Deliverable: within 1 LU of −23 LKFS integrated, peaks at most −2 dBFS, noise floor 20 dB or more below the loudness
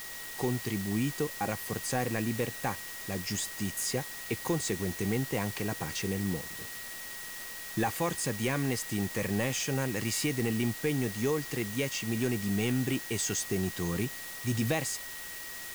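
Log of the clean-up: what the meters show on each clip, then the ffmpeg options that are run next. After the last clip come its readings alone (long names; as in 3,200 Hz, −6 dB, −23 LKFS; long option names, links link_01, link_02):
interfering tone 1,900 Hz; level of the tone −45 dBFS; background noise floor −42 dBFS; target noise floor −52 dBFS; integrated loudness −32.0 LKFS; sample peak −17.5 dBFS; target loudness −23.0 LKFS
→ -af "bandreject=frequency=1900:width=30"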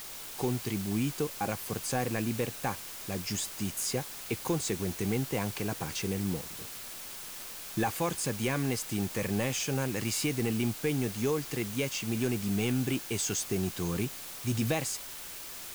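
interfering tone none found; background noise floor −43 dBFS; target noise floor −53 dBFS
→ -af "afftdn=noise_reduction=10:noise_floor=-43"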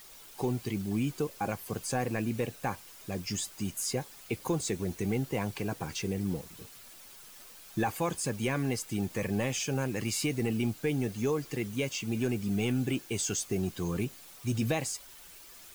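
background noise floor −51 dBFS; target noise floor −53 dBFS
→ -af "afftdn=noise_reduction=6:noise_floor=-51"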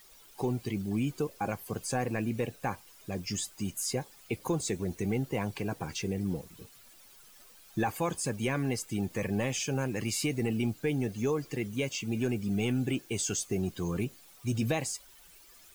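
background noise floor −56 dBFS; integrated loudness −33.0 LKFS; sample peak −18.5 dBFS; target loudness −23.0 LKFS
→ -af "volume=10dB"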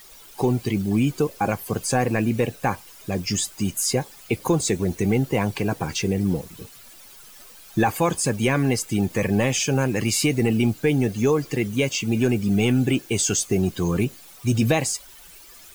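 integrated loudness −23.0 LKFS; sample peak −8.5 dBFS; background noise floor −46 dBFS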